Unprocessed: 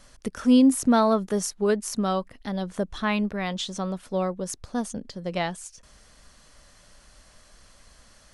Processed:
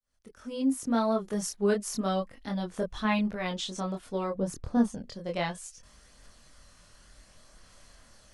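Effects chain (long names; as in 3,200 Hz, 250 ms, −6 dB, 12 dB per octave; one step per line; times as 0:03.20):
fade in at the beginning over 1.73 s
0:04.35–0:04.93: tilt shelving filter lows +6.5 dB, about 1,500 Hz
multi-voice chorus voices 2, 0.32 Hz, delay 24 ms, depth 2.1 ms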